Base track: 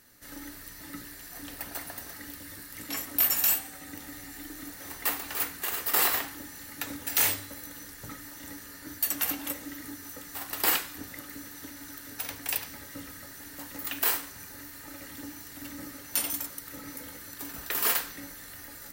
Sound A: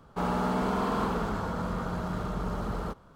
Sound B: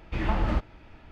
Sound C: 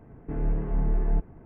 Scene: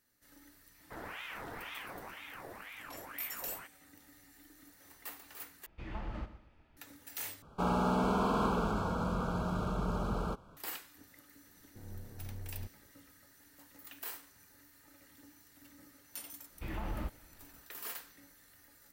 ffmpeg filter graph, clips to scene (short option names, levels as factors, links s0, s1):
-filter_complex "[1:a]asplit=2[s0][s1];[2:a]asplit=2[s2][s3];[0:a]volume=0.141[s4];[s0]aeval=exprs='val(0)*sin(2*PI*1400*n/s+1400*0.65/2*sin(2*PI*2*n/s))':c=same[s5];[s2]aecho=1:1:121|242|363:0.224|0.0761|0.0259[s6];[s1]asuperstop=centerf=1900:order=12:qfactor=3.4[s7];[3:a]aeval=exprs='val(0)*sin(2*PI*57*n/s)':c=same[s8];[s3]alimiter=limit=0.141:level=0:latency=1:release=63[s9];[s4]asplit=3[s10][s11][s12];[s10]atrim=end=5.664[s13];[s6]atrim=end=1.11,asetpts=PTS-STARTPTS,volume=0.168[s14];[s11]atrim=start=6.766:end=7.424[s15];[s7]atrim=end=3.15,asetpts=PTS-STARTPTS,volume=0.794[s16];[s12]atrim=start=10.566[s17];[s5]atrim=end=3.15,asetpts=PTS-STARTPTS,volume=0.2,afade=t=in:d=0.004:c=hsin,afade=t=out:st=3.146:d=0.004:c=hsin,adelay=740[s18];[s8]atrim=end=1.45,asetpts=PTS-STARTPTS,volume=0.133,afade=t=in:d=0.004:c=hsin,afade=t=out:st=1.446:d=0.004:c=hsin,adelay=11470[s19];[s9]atrim=end=1.11,asetpts=PTS-STARTPTS,volume=0.266,afade=t=in:d=0.1,afade=t=out:st=1.01:d=0.1,adelay=16490[s20];[s13][s14]acrossfade=d=0.004:c1=hsin:c2=hsin[s21];[s21][s15]acrossfade=d=0.004:c1=hsin:c2=hsin[s22];[s22][s16]acrossfade=d=0.004:c1=hsin:c2=hsin[s23];[s23][s17]acrossfade=d=0.004:c1=hsin:c2=hsin[s24];[s24][s18][s19][s20]amix=inputs=4:normalize=0"